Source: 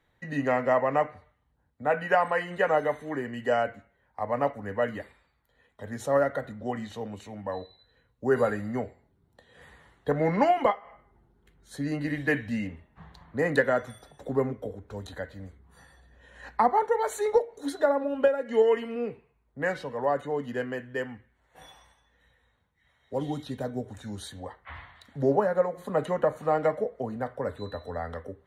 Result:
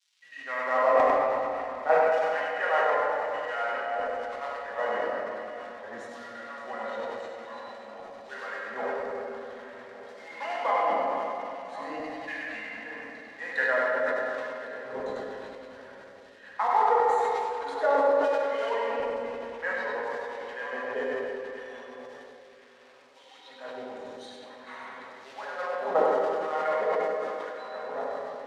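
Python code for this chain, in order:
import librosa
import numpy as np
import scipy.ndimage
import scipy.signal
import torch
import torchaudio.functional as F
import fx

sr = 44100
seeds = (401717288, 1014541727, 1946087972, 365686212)

p1 = fx.reverse_delay_fb(x, sr, ms=288, feedback_pct=65, wet_db=-10)
p2 = fx.quant_companded(p1, sr, bits=4)
p3 = p1 + (p2 * librosa.db_to_amplitude(-8.0))
p4 = fx.dmg_crackle(p3, sr, seeds[0], per_s=270.0, level_db=-36.0)
p5 = fx.filter_lfo_highpass(p4, sr, shape='saw_down', hz=1.0, low_hz=470.0, high_hz=5700.0, q=0.81)
p6 = fx.spacing_loss(p5, sr, db_at_10k=25)
p7 = fx.notch_comb(p6, sr, f0_hz=150.0)
p8 = p7 + fx.echo_single(p7, sr, ms=98, db=-5.0, dry=0)
p9 = fx.room_shoebox(p8, sr, seeds[1], volume_m3=210.0, walls='hard', distance_m=0.61)
y = fx.sustainer(p9, sr, db_per_s=21.0)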